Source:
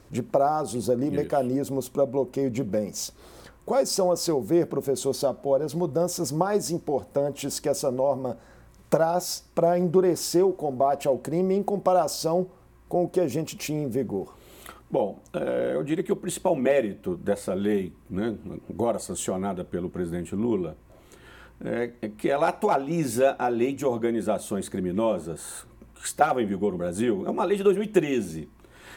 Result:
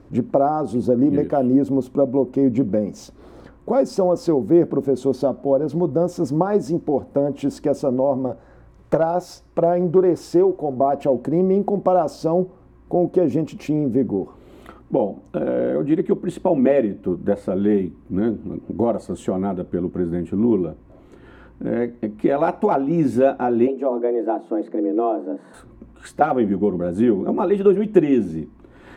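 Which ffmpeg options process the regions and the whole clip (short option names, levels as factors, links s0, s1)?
-filter_complex "[0:a]asettb=1/sr,asplit=3[s0][s1][s2];[s0]atrim=end=8.274[s3];[s1]atrim=start=8.27:end=10.77,asetpts=PTS-STARTPTS,afade=t=in:d=0.004:c=qsin,afade=t=out:st=2.496:d=0.004:c=qsin,equalizer=f=230:t=o:w=0.46:g=-11,asoftclip=type=hard:threshold=0.211[s4];[s2]atrim=start=10.766[s5];[s3][s4]acrossfade=d=0.004:c1=hsin:c2=qsin[s6];[s6][s5]acrossfade=d=0.004:c1=qsin:c2=hsin,asettb=1/sr,asplit=3[s7][s8][s9];[s7]atrim=end=23.674[s10];[s8]atrim=start=23.67:end=25.54,asetpts=PTS-STARTPTS,afade=t=in:d=0.004:c=qsin,afade=t=out:st=1.866:d=0.004:c=qsin,afreqshift=130,lowpass=f=1200:p=1[s11];[s9]atrim=start=25.536[s12];[s10][s11]acrossfade=d=0.004:c1=hsin:c2=qsin[s13];[s13][s12]acrossfade=d=0.004:c1=qsin:c2=hsin,lowpass=f=1000:p=1,equalizer=f=270:t=o:w=0.55:g=7,volume=1.78"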